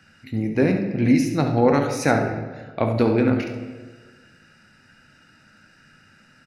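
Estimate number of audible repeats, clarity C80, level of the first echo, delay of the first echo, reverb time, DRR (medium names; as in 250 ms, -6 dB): 1, 8.5 dB, -9.5 dB, 70 ms, 1.4 s, 3.5 dB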